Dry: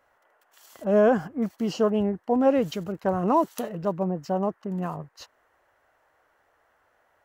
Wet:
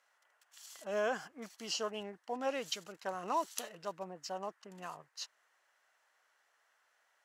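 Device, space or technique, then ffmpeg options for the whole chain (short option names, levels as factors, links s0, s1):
piezo pickup straight into a mixer: -af "lowpass=6700,aderivative,volume=2.24"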